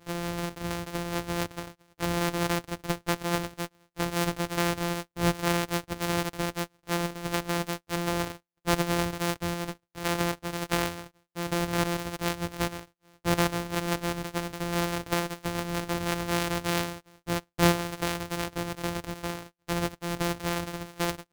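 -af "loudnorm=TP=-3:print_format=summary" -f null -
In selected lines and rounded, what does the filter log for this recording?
Input Integrated:    -30.6 LUFS
Input True Peak:      -6.7 dBTP
Input LRA:             3.3 LU
Input Threshold:     -40.8 LUFS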